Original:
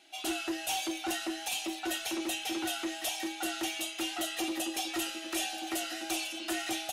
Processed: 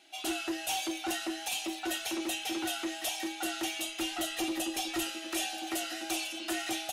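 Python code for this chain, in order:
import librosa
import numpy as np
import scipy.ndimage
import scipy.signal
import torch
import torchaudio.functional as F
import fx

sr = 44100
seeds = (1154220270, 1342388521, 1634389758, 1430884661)

y = fx.dmg_crackle(x, sr, seeds[0], per_s=64.0, level_db=-47.0, at=(1.62, 2.63), fade=0.02)
y = fx.low_shelf(y, sr, hz=120.0, db=9.0, at=(3.85, 5.09))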